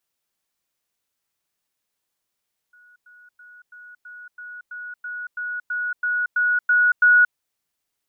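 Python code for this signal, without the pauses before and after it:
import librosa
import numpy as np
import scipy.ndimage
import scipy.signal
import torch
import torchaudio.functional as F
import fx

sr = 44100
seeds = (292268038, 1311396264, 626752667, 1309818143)

y = fx.level_ladder(sr, hz=1460.0, from_db=-49.5, step_db=3.0, steps=14, dwell_s=0.23, gap_s=0.1)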